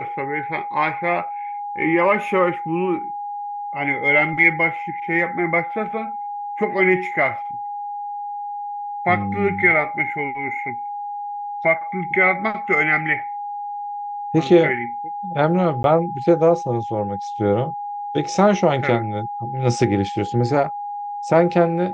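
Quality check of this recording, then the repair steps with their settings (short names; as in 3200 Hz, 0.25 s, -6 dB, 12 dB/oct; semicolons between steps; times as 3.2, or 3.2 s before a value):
tone 820 Hz -26 dBFS
15.83–15.84 gap 12 ms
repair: notch 820 Hz, Q 30; interpolate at 15.83, 12 ms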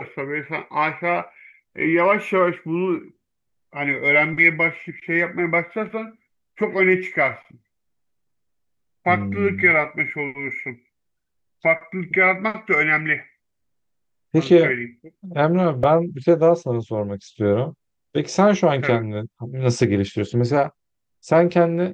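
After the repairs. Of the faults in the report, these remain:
none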